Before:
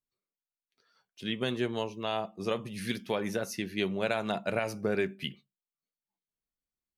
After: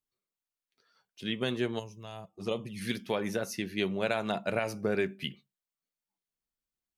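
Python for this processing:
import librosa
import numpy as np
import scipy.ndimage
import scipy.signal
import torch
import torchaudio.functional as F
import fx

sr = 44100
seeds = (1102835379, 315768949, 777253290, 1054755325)

y = fx.spec_box(x, sr, start_s=1.79, length_s=0.59, low_hz=200.0, high_hz=4900.0, gain_db=-13)
y = fx.env_flanger(y, sr, rest_ms=4.1, full_db=-29.5, at=(2.24, 2.8), fade=0.02)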